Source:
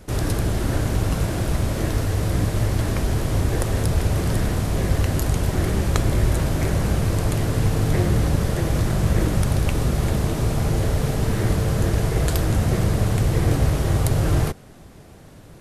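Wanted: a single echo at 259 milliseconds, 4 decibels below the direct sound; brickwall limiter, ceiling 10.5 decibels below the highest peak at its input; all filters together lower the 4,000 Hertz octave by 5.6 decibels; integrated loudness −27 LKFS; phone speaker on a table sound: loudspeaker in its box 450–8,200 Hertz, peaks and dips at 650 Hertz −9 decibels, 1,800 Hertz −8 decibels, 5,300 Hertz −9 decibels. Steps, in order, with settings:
parametric band 4,000 Hz −4.5 dB
brickwall limiter −16 dBFS
loudspeaker in its box 450–8,200 Hz, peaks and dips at 650 Hz −9 dB, 1,800 Hz −8 dB, 5,300 Hz −9 dB
single-tap delay 259 ms −4 dB
level +9.5 dB

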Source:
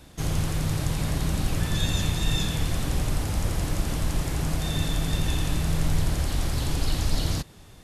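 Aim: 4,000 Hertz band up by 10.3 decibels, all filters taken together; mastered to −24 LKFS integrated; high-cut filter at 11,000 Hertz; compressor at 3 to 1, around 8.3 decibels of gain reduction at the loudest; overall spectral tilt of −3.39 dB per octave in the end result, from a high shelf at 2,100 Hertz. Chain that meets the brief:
low-pass filter 11,000 Hz
high-shelf EQ 2,100 Hz +3.5 dB
parametric band 4,000 Hz +9 dB
downward compressor 3 to 1, threshold −29 dBFS
level +7 dB

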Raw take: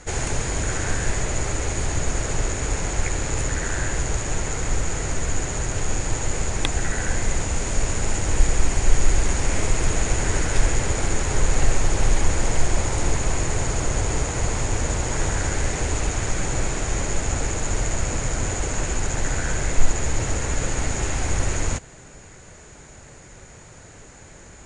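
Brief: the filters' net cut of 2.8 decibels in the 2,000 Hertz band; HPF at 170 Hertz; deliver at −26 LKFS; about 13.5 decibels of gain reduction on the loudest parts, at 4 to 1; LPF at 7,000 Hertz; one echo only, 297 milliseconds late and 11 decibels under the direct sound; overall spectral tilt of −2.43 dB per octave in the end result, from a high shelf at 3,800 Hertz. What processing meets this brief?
high-pass filter 170 Hz
low-pass filter 7,000 Hz
parametric band 2,000 Hz −5 dB
high-shelf EQ 3,800 Hz +6 dB
downward compressor 4 to 1, threshold −37 dBFS
single-tap delay 297 ms −11 dB
level +10.5 dB

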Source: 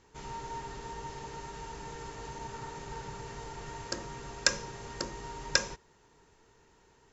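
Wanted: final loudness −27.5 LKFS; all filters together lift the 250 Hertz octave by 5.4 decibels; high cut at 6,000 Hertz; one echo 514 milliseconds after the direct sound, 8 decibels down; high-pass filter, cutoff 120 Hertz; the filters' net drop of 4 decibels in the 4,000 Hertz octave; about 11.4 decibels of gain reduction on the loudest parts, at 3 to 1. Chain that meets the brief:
high-pass filter 120 Hz
low-pass filter 6,000 Hz
parametric band 250 Hz +8 dB
parametric band 4,000 Hz −3.5 dB
downward compressor 3 to 1, threshold −41 dBFS
single-tap delay 514 ms −8 dB
level +16.5 dB

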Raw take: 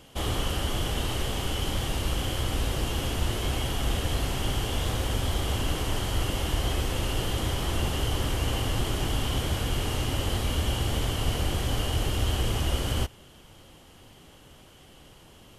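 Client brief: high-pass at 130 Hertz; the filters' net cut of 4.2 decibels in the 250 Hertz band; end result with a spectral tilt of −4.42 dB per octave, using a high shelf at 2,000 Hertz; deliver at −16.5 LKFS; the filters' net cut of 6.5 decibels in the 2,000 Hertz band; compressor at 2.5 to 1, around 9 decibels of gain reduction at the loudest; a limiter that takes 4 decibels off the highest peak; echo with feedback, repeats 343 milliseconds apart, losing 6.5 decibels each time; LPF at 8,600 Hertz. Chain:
high-pass filter 130 Hz
low-pass filter 8,600 Hz
parametric band 250 Hz −5 dB
high-shelf EQ 2,000 Hz −4 dB
parametric band 2,000 Hz −6 dB
downward compressor 2.5 to 1, threshold −44 dBFS
brickwall limiter −34.5 dBFS
repeating echo 343 ms, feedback 47%, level −6.5 dB
level +27 dB

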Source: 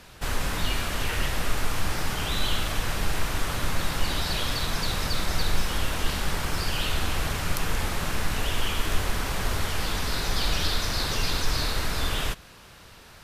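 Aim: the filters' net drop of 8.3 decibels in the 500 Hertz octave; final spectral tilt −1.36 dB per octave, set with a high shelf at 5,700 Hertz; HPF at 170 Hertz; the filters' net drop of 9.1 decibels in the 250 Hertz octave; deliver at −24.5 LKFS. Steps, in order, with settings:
high-pass filter 170 Hz
parametric band 250 Hz −8.5 dB
parametric band 500 Hz −8.5 dB
high-shelf EQ 5,700 Hz +4.5 dB
level +4.5 dB

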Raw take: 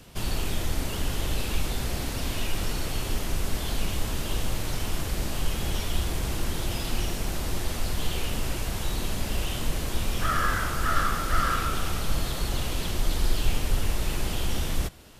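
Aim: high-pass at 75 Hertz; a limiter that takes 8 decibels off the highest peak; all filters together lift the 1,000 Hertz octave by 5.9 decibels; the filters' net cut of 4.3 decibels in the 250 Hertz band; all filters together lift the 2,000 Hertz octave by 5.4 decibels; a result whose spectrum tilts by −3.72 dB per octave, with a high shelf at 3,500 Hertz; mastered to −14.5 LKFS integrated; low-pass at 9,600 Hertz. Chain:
high-pass filter 75 Hz
low-pass filter 9,600 Hz
parametric band 250 Hz −6.5 dB
parametric band 1,000 Hz +6.5 dB
parametric band 2,000 Hz +6.5 dB
high-shelf EQ 3,500 Hz −6 dB
level +16 dB
brickwall limiter −1.5 dBFS

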